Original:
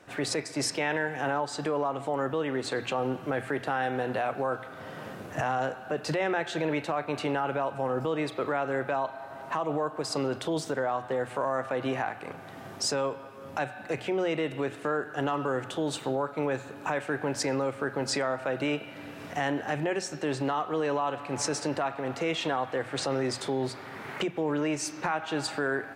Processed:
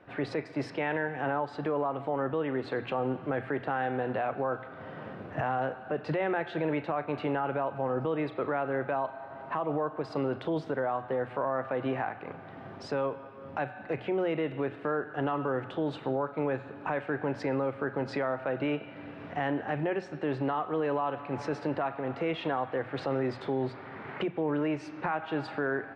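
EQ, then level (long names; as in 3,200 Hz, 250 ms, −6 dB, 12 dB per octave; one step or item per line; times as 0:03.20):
high-frequency loss of the air 380 metres
0.0 dB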